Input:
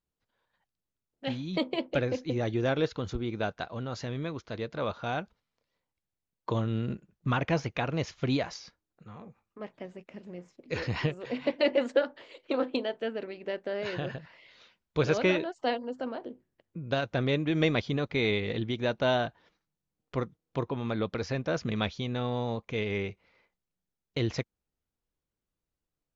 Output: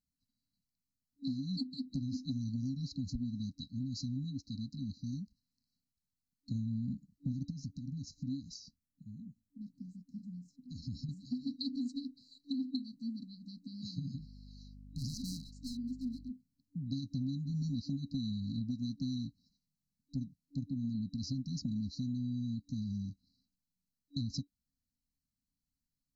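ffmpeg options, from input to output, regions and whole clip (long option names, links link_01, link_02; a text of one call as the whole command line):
ffmpeg -i in.wav -filter_complex "[0:a]asettb=1/sr,asplit=3[link_01][link_02][link_03];[link_01]atrim=end=7.504[link_04];[link_02]atrim=start=7.5:end=11.09,asetpts=PTS-STARTPTS,afade=type=in:duration=0.004:curve=qsin,afade=type=out:start_time=3.586:duration=0.004:curve=qsin,equalizer=frequency=4300:width_type=o:width=1.1:gain=-7.5,acompressor=threshold=-33dB:ratio=16:attack=3.2:release=140:knee=1:detection=peak[link_05];[link_03]atrim=start=11.086[link_06];[link_04][link_05]acrossfade=duration=0.004:curve1=hsin:curve2=qsin[link_07];[link_07][link_06]acrossfade=duration=0.004:curve1=qsin:curve2=hsin,asettb=1/sr,asplit=3[link_08][link_09][link_10];[link_08]atrim=end=14.194[link_11];[link_09]atrim=start=14.19:end=16.31,asetpts=PTS-STARTPTS,afade=type=in:duration=0.004:curve=qsin,afade=type=out:start_time=2.116:duration=0.004:curve=qsin,volume=31.5dB,asoftclip=hard,volume=-31.5dB,aeval=exprs='val(0)+0.00316*(sin(2*PI*50*n/s)+sin(2*PI*2*50*n/s)/2+sin(2*PI*3*50*n/s)/3+sin(2*PI*4*50*n/s)/4+sin(2*PI*5*50*n/s)/5)':channel_layout=same[link_12];[link_10]atrim=start=16.306[link_13];[link_11][link_12]acrossfade=duration=0.004:curve1=hsin:curve2=qsin[link_14];[link_14][link_13]acrossfade=duration=0.004:curve1=qsin:curve2=hsin,afftfilt=real='re*(1-between(b*sr/4096,290,3900))':imag='im*(1-between(b*sr/4096,290,3900))':win_size=4096:overlap=0.75,bass=frequency=250:gain=-10,treble=frequency=4000:gain=-10,acompressor=threshold=-41dB:ratio=6,volume=8dB" out.wav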